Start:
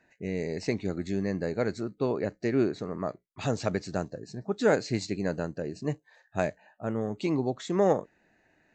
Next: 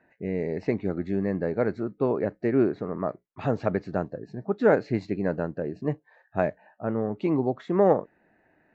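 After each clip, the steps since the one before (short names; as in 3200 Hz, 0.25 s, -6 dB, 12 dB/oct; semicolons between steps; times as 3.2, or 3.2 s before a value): LPF 1700 Hz 12 dB/oct; low shelf 93 Hz -6.5 dB; gain +4 dB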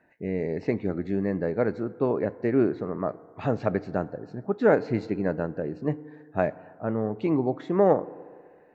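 FDN reverb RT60 2 s, low-frequency decay 0.75×, high-frequency decay 0.35×, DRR 17 dB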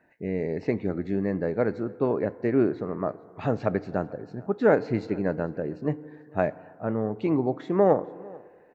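echo 0.443 s -24 dB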